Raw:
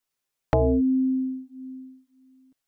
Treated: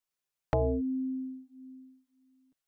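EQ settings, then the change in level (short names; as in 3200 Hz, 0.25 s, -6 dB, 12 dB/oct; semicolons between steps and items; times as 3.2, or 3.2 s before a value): bell 270 Hz -4 dB 0.42 oct; -6.5 dB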